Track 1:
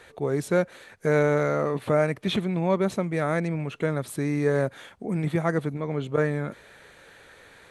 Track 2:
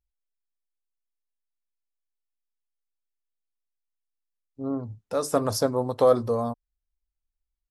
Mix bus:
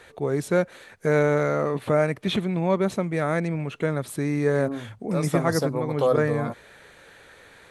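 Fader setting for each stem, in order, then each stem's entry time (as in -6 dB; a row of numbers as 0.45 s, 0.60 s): +1.0 dB, -3.0 dB; 0.00 s, 0.00 s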